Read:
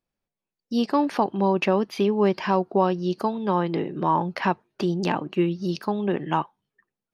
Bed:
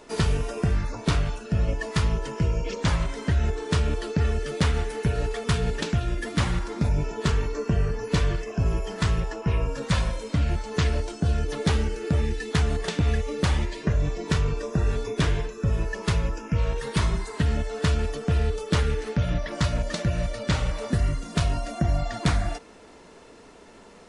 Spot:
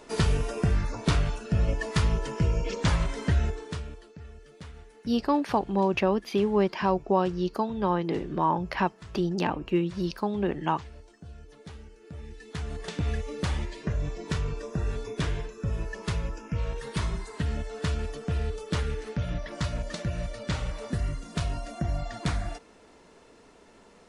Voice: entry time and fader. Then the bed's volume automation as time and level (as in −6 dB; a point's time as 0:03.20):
4.35 s, −3.0 dB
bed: 0:03.37 −1 dB
0:04.12 −22 dB
0:11.95 −22 dB
0:13.01 −6 dB